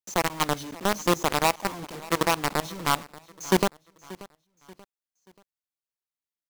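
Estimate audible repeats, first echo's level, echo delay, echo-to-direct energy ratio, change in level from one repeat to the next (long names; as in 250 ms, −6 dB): 2, −20.0 dB, 583 ms, −19.5 dB, −8.0 dB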